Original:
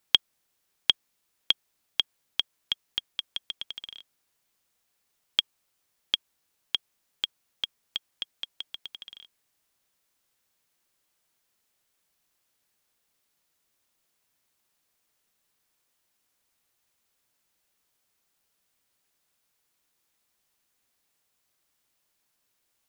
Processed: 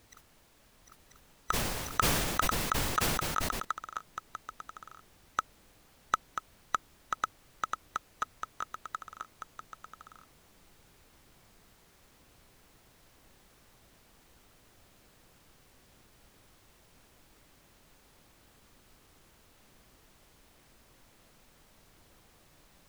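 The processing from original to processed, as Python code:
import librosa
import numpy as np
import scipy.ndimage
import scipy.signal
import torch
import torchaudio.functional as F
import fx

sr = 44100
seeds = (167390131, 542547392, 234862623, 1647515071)

y = fx.band_swap(x, sr, width_hz=2000)
y = fx.noise_reduce_blind(y, sr, reduce_db=17)
y = fx.over_compress(y, sr, threshold_db=-39.0, ratio=-0.5)
y = fx.dmg_noise_colour(y, sr, seeds[0], colour='pink', level_db=-69.0)
y = y + 10.0 ** (-5.5 / 20.0) * np.pad(y, (int(988 * sr / 1000.0), 0))[:len(y)]
y = fx.sustainer(y, sr, db_per_s=31.0, at=(1.51, 3.63), fade=0.02)
y = y * 10.0 ** (6.5 / 20.0)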